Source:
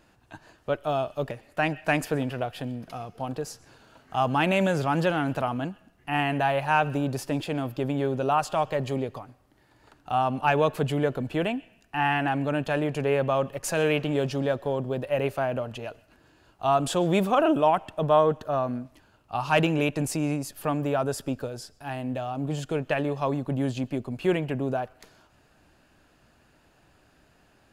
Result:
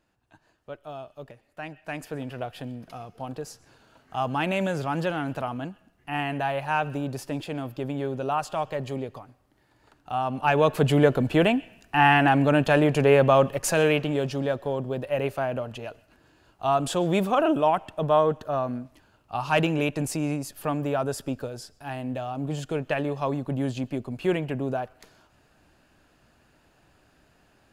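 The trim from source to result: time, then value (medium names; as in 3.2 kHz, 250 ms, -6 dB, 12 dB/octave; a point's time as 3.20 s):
1.80 s -12 dB
2.44 s -3 dB
10.21 s -3 dB
10.96 s +6.5 dB
13.45 s +6.5 dB
14.19 s -0.5 dB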